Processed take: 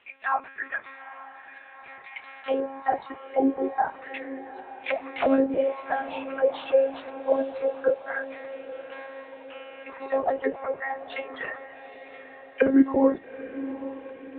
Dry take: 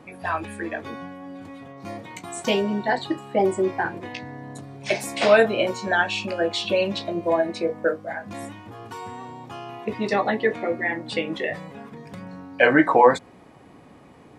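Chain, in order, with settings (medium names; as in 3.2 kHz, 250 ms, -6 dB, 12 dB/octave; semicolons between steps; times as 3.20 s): monotone LPC vocoder at 8 kHz 270 Hz; auto-wah 290–2900 Hz, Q 2.5, down, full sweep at -15 dBFS; echo that smears into a reverb 856 ms, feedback 57%, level -14 dB; trim +4 dB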